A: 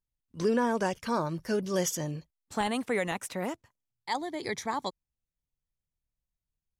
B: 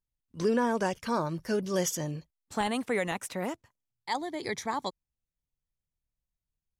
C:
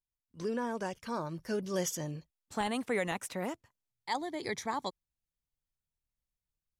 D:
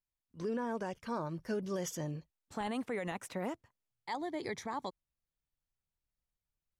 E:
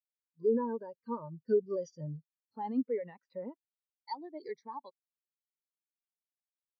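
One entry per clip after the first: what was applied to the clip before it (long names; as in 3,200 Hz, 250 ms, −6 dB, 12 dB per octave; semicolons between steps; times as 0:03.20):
no processing that can be heard
speech leveller 2 s; level −5 dB
high-shelf EQ 3,100 Hz −7.5 dB; brickwall limiter −28 dBFS, peak gain reduction 6.5 dB
loudspeaker in its box 130–6,100 Hz, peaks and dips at 190 Hz −7 dB, 330 Hz −7 dB, 710 Hz −7 dB, 4,600 Hz +10 dB; every bin expanded away from the loudest bin 2.5 to 1; level +7.5 dB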